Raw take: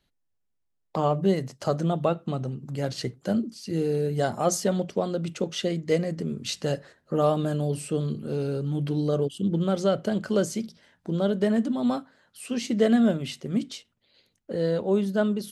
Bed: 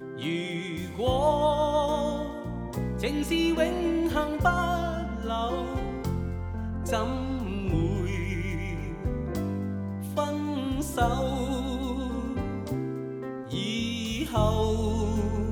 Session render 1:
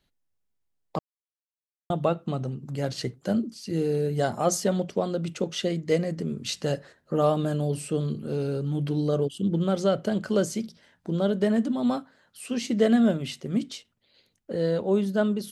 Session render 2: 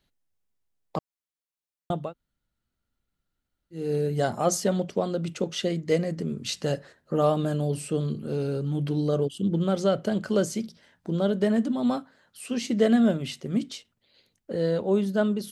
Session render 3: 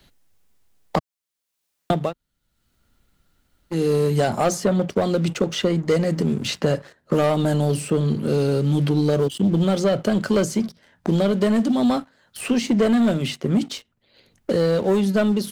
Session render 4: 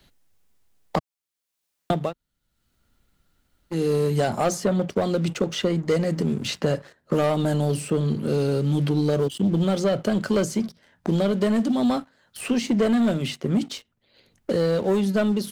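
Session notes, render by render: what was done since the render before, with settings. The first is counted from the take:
0.99–1.9 mute
2.02–3.82 room tone, crossfade 0.24 s
sample leveller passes 2; three-band squash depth 70%
gain -2.5 dB

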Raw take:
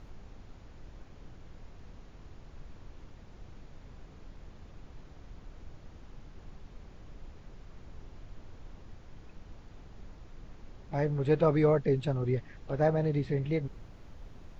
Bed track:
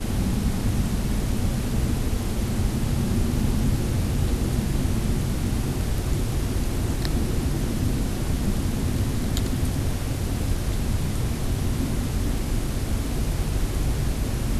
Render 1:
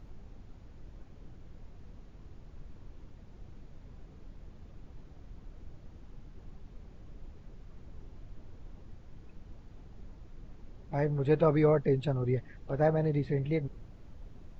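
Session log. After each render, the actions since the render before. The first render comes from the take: denoiser 6 dB, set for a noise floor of -53 dBFS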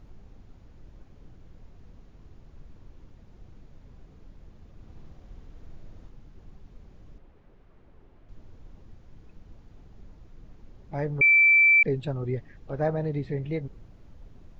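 4.72–6.09 flutter echo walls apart 11.8 m, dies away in 1.2 s; 7.18–8.29 tone controls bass -8 dB, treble -14 dB; 11.21–11.83 bleep 2330 Hz -14.5 dBFS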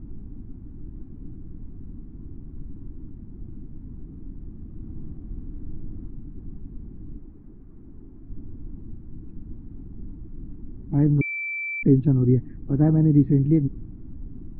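LPF 1200 Hz 12 dB/oct; resonant low shelf 400 Hz +10.5 dB, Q 3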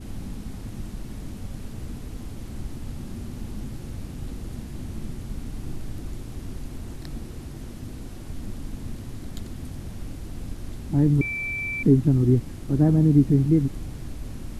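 add bed track -13.5 dB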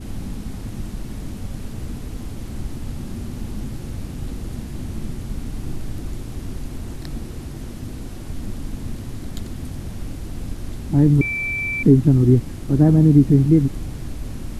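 gain +5 dB; limiter -3 dBFS, peak gain reduction 1 dB

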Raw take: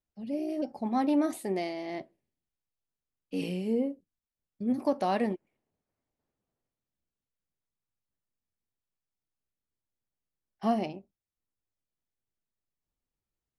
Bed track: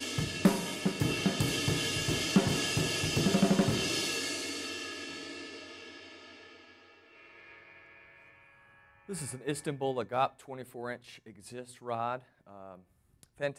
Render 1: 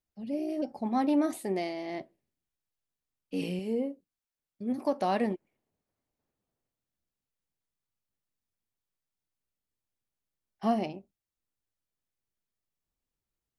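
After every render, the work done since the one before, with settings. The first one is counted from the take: 3.59–5.01 low shelf 180 Hz -9 dB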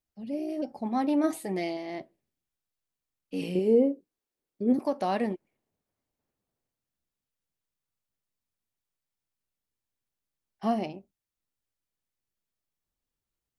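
1.23–1.77 comb 6.3 ms, depth 64%; 3.55–4.79 bell 380 Hz +13.5 dB 1.4 oct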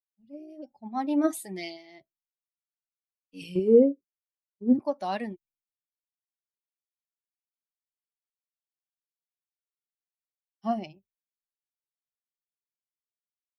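per-bin expansion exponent 1.5; three-band expander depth 70%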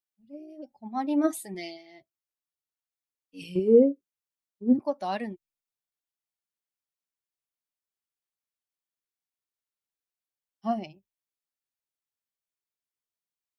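1.54–3.39 notch comb 200 Hz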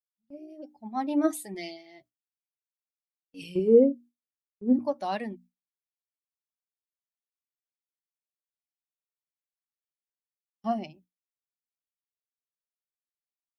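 notches 60/120/180/240/300 Hz; gate with hold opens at -50 dBFS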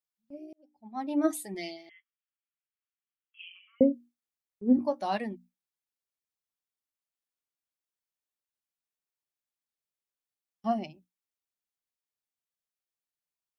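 0.53–1.38 fade in; 1.89–3.81 brick-wall FIR band-pass 1100–3400 Hz; 4.75–5.18 doubler 20 ms -9 dB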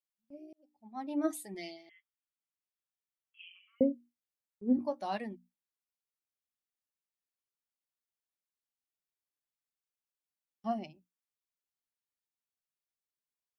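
gain -5.5 dB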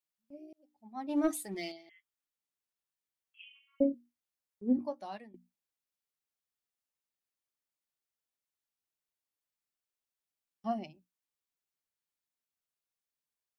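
1.09–1.72 sample leveller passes 1; 3.44–3.94 robotiser 278 Hz; 4.68–5.34 fade out linear, to -18.5 dB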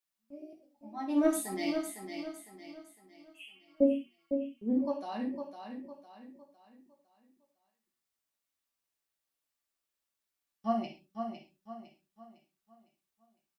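feedback echo 0.506 s, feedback 39%, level -7 dB; non-linear reverb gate 0.15 s falling, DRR -1 dB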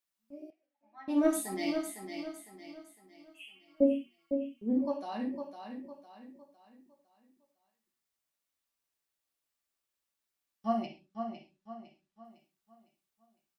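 0.5–1.08 band-pass 1800 Hz, Q 2.2; 10.86–12.25 air absorption 60 m

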